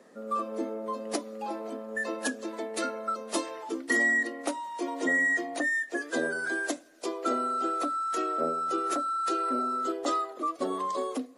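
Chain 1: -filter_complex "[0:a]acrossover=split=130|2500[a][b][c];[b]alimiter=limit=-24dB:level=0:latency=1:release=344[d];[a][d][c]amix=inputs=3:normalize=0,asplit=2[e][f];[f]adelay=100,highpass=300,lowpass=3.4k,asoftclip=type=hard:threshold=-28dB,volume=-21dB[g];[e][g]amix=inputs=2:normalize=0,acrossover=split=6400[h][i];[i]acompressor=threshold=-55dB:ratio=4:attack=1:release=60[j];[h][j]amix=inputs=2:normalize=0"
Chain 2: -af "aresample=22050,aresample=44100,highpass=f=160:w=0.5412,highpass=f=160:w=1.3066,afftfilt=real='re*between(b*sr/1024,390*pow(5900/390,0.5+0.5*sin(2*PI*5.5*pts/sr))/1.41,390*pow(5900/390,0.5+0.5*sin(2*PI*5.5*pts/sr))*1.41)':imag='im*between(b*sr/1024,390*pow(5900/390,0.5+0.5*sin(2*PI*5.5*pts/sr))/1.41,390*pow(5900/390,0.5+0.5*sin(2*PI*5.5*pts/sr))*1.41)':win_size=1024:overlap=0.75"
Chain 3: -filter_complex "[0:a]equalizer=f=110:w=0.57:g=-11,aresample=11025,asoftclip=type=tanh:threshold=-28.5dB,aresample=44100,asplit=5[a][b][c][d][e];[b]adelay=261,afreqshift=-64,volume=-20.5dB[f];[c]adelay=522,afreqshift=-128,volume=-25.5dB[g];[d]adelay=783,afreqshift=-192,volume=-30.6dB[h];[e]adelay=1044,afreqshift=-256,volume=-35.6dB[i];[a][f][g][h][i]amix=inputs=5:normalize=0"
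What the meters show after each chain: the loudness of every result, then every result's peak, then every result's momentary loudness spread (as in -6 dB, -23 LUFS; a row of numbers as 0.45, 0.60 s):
-32.5, -38.5, -34.0 LUFS; -20.0, -21.5, -25.5 dBFS; 9, 10, 8 LU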